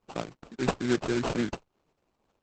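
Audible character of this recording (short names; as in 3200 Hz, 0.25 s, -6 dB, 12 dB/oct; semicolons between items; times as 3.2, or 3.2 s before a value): a quantiser's noise floor 12-bit, dither none; phasing stages 8, 2.3 Hz, lowest notch 780–2600 Hz; aliases and images of a low sample rate 1900 Hz, jitter 20%; Opus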